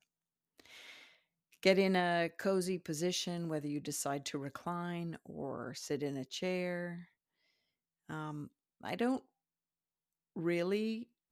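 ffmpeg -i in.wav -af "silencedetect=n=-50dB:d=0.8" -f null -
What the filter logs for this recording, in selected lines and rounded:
silence_start: 7.03
silence_end: 8.09 | silence_duration: 1.06
silence_start: 9.20
silence_end: 10.36 | silence_duration: 1.17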